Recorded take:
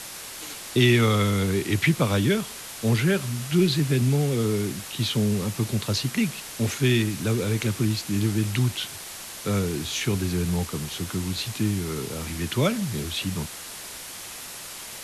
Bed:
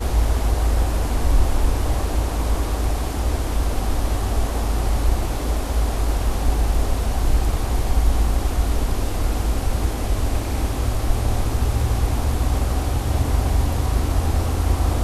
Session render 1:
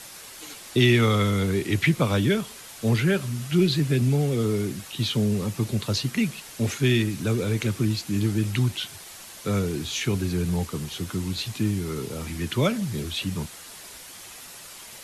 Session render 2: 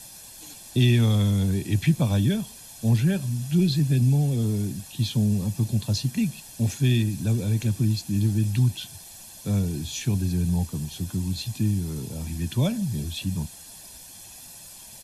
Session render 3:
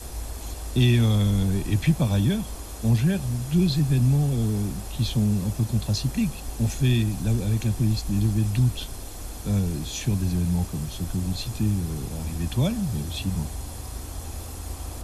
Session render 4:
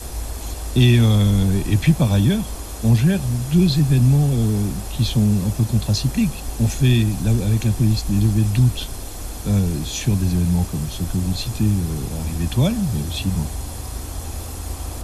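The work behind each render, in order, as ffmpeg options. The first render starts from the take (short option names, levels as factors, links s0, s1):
-af "afftdn=nr=6:nf=-39"
-af "equalizer=f=1600:w=0.56:g=-12,aecho=1:1:1.2:0.56"
-filter_complex "[1:a]volume=0.168[s0];[0:a][s0]amix=inputs=2:normalize=0"
-af "volume=1.88"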